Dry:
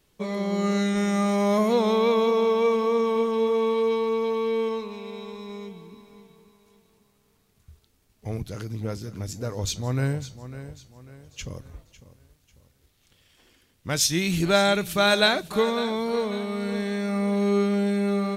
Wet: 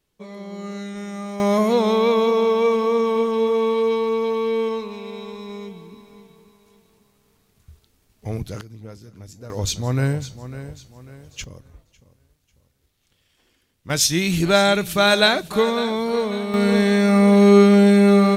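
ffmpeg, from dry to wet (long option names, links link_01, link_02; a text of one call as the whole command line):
ffmpeg -i in.wav -af "asetnsamples=nb_out_samples=441:pad=0,asendcmd='1.4 volume volume 3.5dB;8.61 volume volume -8dB;9.5 volume volume 4.5dB;11.44 volume volume -4dB;13.9 volume volume 4dB;16.54 volume volume 11dB',volume=-8dB" out.wav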